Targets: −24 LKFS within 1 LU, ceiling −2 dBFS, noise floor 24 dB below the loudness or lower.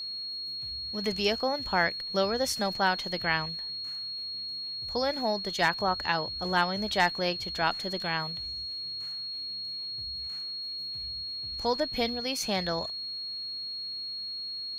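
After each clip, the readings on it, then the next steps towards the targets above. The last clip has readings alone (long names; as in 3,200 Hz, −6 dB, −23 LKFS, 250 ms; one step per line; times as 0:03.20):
interfering tone 4,300 Hz; level of the tone −34 dBFS; integrated loudness −30.0 LKFS; sample peak −11.0 dBFS; target loudness −24.0 LKFS
→ notch filter 4,300 Hz, Q 30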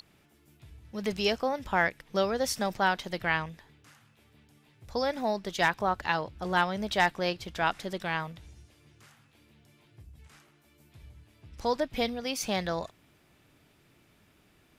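interfering tone none found; integrated loudness −30.0 LKFS; sample peak −11.5 dBFS; target loudness −24.0 LKFS
→ level +6 dB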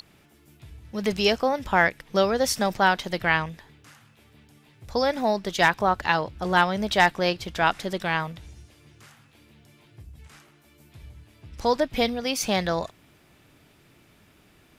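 integrated loudness −24.0 LKFS; sample peak −5.5 dBFS; background noise floor −58 dBFS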